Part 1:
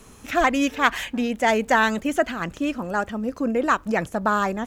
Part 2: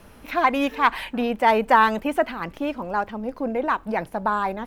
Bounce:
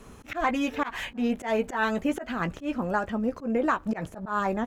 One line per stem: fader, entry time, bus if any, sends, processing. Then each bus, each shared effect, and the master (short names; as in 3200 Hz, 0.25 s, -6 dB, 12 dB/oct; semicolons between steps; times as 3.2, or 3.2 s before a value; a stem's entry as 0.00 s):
+0.5 dB, 0.00 s, no send, high shelf 3100 Hz -9.5 dB; compressor, threshold -22 dBFS, peak gain reduction 9 dB
-11.0 dB, 15 ms, polarity flipped, no send, dry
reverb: off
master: auto swell 0.122 s